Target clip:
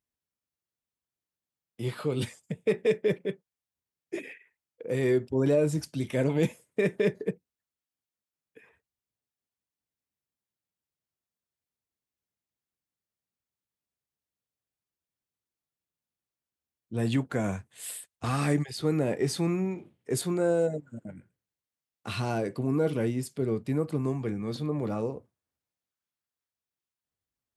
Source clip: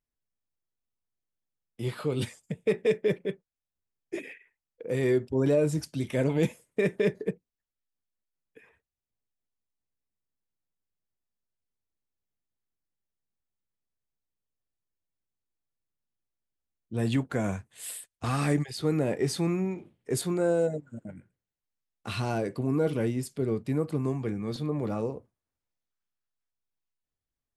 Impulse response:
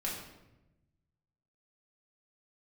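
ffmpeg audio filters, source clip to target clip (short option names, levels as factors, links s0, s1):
-af "highpass=65"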